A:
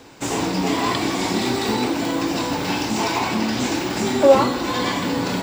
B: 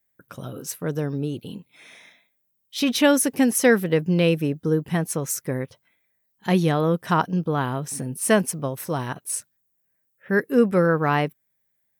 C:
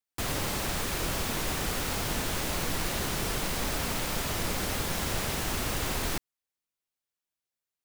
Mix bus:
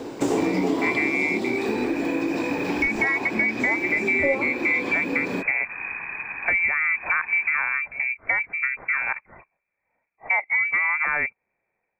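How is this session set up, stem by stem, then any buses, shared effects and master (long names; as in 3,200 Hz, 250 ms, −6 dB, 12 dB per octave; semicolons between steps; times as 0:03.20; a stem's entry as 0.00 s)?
+1.0 dB, 0.00 s, no bus, no send, parametric band 380 Hz +14.5 dB 2.1 octaves; automatic ducking −12 dB, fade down 1.55 s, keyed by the second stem
+2.5 dB, 0.00 s, bus A, no send, automatic gain control gain up to 6.5 dB
+0.5 dB, 1.40 s, bus A, no send, lower of the sound and its delayed copy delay 1.3 ms; low-pass filter 1,900 Hz 24 dB per octave
bus A: 0.0 dB, voice inversion scrambler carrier 2,500 Hz; brickwall limiter −5 dBFS, peak gain reduction 6 dB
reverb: not used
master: downward compressor 3 to 1, threshold −22 dBFS, peak gain reduction 13 dB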